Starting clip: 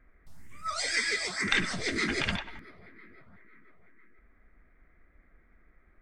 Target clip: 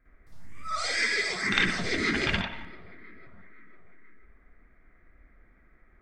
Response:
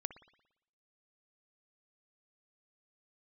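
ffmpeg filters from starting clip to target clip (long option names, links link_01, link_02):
-filter_complex "[0:a]asplit=2[link_01][link_02];[1:a]atrim=start_sample=2205,lowpass=5500,adelay=55[link_03];[link_02][link_03]afir=irnorm=-1:irlink=0,volume=10dB[link_04];[link_01][link_04]amix=inputs=2:normalize=0,volume=-5.5dB"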